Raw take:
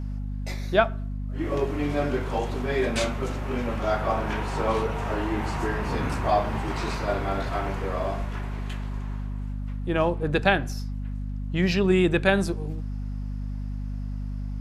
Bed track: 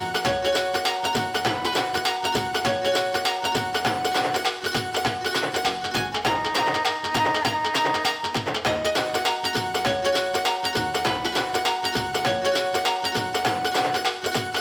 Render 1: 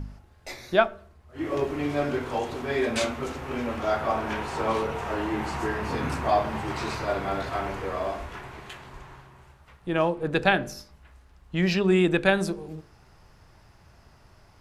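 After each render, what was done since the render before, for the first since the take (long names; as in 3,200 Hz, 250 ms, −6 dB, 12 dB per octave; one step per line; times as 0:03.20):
hum removal 50 Hz, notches 12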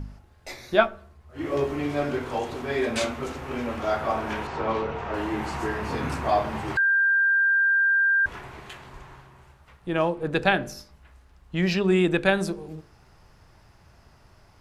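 0:00.71–0:01.80: double-tracking delay 14 ms −6.5 dB
0:04.47–0:05.14: high-frequency loss of the air 140 metres
0:06.77–0:08.26: beep over 1,590 Hz −17.5 dBFS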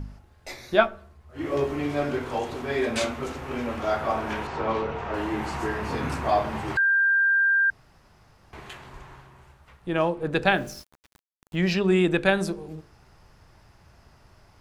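0:07.70–0:08.53: fill with room tone
0:10.47–0:11.56: centre clipping without the shift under −45 dBFS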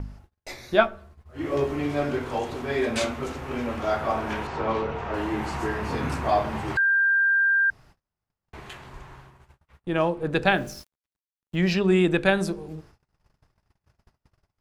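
low-shelf EQ 230 Hz +2 dB
noise gate −49 dBFS, range −33 dB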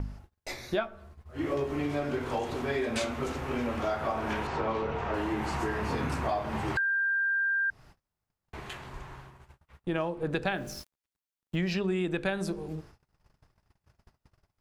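downward compressor 6 to 1, threshold −27 dBFS, peak gain reduction 14 dB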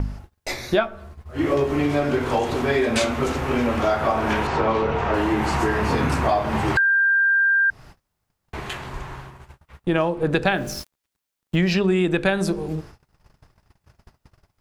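level +10 dB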